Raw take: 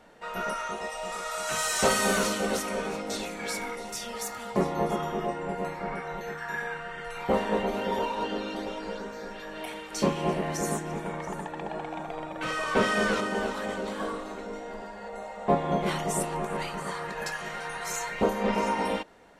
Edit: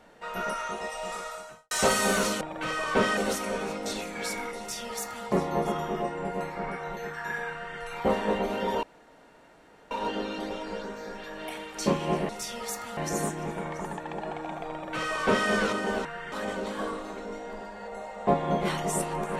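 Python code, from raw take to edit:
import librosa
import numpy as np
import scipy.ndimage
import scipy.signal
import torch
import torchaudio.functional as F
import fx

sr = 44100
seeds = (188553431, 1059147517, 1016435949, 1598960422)

y = fx.studio_fade_out(x, sr, start_s=1.09, length_s=0.62)
y = fx.edit(y, sr, fx.duplicate(start_s=3.82, length_s=0.68, to_s=10.45),
    fx.duplicate(start_s=6.76, length_s=0.27, to_s=13.53),
    fx.insert_room_tone(at_s=8.07, length_s=1.08),
    fx.duplicate(start_s=12.21, length_s=0.76, to_s=2.41), tone=tone)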